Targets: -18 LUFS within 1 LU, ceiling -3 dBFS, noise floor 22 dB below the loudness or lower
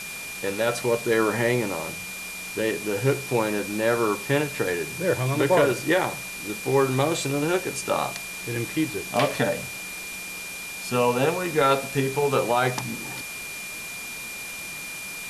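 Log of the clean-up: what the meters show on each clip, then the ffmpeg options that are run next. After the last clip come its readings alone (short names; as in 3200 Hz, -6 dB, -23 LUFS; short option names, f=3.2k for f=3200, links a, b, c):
steady tone 2400 Hz; tone level -35 dBFS; noise floor -36 dBFS; noise floor target -48 dBFS; loudness -25.5 LUFS; peak -7.5 dBFS; loudness target -18.0 LUFS
-> -af "bandreject=f=2.4k:w=30"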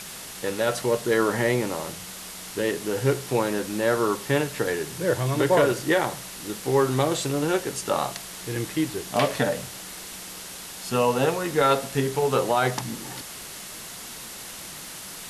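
steady tone none; noise floor -39 dBFS; noise floor target -47 dBFS
-> -af "afftdn=nr=8:nf=-39"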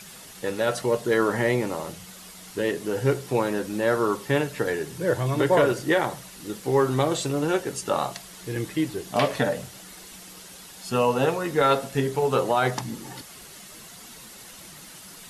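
noise floor -45 dBFS; noise floor target -47 dBFS
-> -af "afftdn=nr=6:nf=-45"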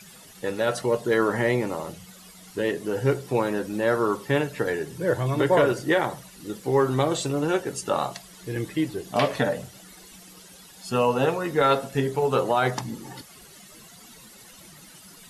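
noise floor -49 dBFS; loudness -25.0 LUFS; peak -8.0 dBFS; loudness target -18.0 LUFS
-> -af "volume=7dB,alimiter=limit=-3dB:level=0:latency=1"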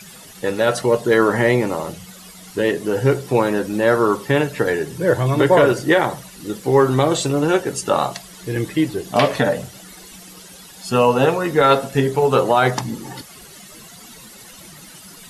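loudness -18.0 LUFS; peak -3.0 dBFS; noise floor -42 dBFS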